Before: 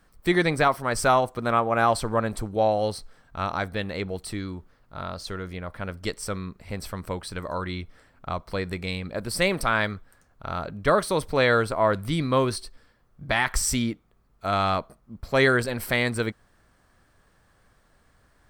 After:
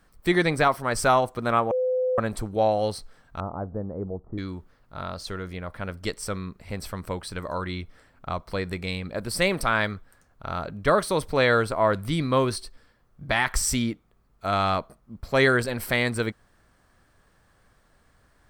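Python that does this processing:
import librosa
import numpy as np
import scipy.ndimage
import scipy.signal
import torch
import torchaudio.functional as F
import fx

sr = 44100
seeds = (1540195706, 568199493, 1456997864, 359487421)

y = fx.bessel_lowpass(x, sr, hz=660.0, order=8, at=(3.4, 4.38))
y = fx.edit(y, sr, fx.bleep(start_s=1.71, length_s=0.47, hz=509.0, db=-21.0), tone=tone)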